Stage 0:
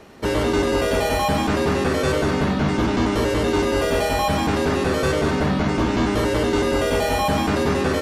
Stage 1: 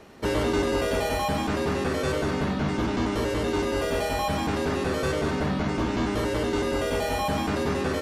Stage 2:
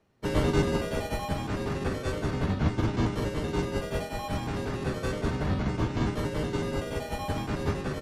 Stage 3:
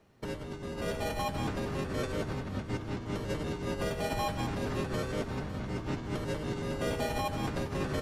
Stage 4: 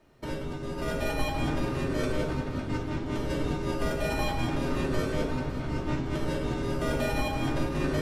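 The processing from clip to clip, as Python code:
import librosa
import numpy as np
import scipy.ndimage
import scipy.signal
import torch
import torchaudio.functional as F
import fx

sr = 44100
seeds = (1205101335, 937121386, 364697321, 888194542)

y1 = fx.rider(x, sr, range_db=10, speed_s=2.0)
y1 = y1 * librosa.db_to_amplitude(-6.0)
y2 = fx.octave_divider(y1, sr, octaves=1, level_db=2.0)
y2 = fx.upward_expand(y2, sr, threshold_db=-34.0, expansion=2.5)
y3 = fx.over_compress(y2, sr, threshold_db=-35.0, ratio=-1.0)
y3 = fx.echo_feedback(y3, sr, ms=556, feedback_pct=58, wet_db=-14.5)
y4 = fx.room_shoebox(y3, sr, seeds[0], volume_m3=840.0, walls='furnished', distance_m=2.7)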